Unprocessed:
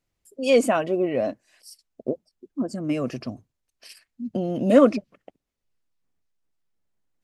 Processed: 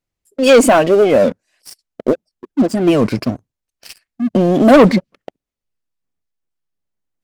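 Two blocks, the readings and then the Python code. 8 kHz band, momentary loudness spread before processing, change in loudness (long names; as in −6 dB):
can't be measured, 18 LU, +10.0 dB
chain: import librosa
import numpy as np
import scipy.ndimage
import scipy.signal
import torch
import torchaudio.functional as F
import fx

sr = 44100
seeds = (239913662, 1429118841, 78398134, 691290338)

y = fx.leveller(x, sr, passes=3)
y = fx.record_warp(y, sr, rpm=33.33, depth_cents=250.0)
y = F.gain(torch.from_numpy(y), 3.0).numpy()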